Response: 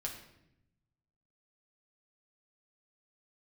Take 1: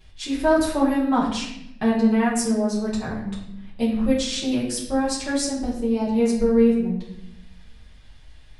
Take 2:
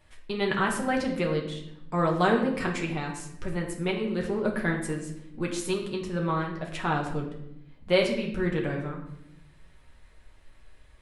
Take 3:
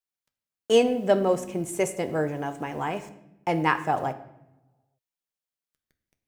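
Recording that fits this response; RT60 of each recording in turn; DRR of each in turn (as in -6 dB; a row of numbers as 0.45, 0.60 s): 2; 0.80, 0.80, 0.85 s; -8.0, -0.5, 8.0 dB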